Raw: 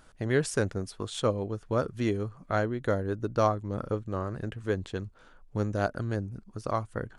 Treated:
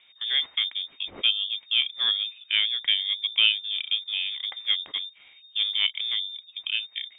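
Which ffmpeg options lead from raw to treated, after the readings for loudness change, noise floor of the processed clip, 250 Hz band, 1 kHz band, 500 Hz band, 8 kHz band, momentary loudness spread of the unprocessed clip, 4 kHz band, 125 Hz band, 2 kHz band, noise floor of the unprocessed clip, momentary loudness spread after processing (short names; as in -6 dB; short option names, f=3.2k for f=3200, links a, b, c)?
+6.5 dB, -56 dBFS, under -25 dB, -16.5 dB, under -25 dB, under -35 dB, 9 LU, +25.5 dB, under -35 dB, +7.5 dB, -57 dBFS, 10 LU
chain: -filter_complex "[0:a]acrossover=split=160[a][b];[b]dynaudnorm=f=260:g=7:m=4dB[c];[a][c]amix=inputs=2:normalize=0,lowpass=f=3.1k:t=q:w=0.5098,lowpass=f=3.1k:t=q:w=0.6013,lowpass=f=3.1k:t=q:w=0.9,lowpass=f=3.1k:t=q:w=2.563,afreqshift=-3700"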